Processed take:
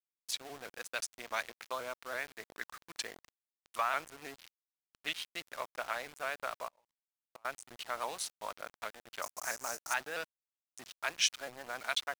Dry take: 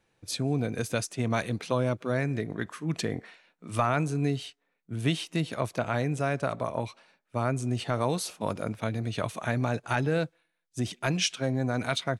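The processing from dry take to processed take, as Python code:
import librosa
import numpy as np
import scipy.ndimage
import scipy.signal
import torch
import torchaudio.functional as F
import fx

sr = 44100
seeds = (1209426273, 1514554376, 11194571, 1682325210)

y = fx.wiener(x, sr, points=15)
y = scipy.signal.sosfilt(scipy.signal.butter(2, 1100.0, 'highpass', fs=sr, output='sos'), y)
y = fx.quant_dither(y, sr, seeds[0], bits=8, dither='none')
y = fx.gate_flip(y, sr, shuts_db=-41.0, range_db=-31, at=(6.67, 7.45))
y = fx.high_shelf_res(y, sr, hz=4700.0, db=10.0, q=3.0, at=(9.22, 9.94))
y = fx.vibrato_shape(y, sr, shape='saw_up', rate_hz=6.1, depth_cents=100.0)
y = y * librosa.db_to_amplitude(-1.0)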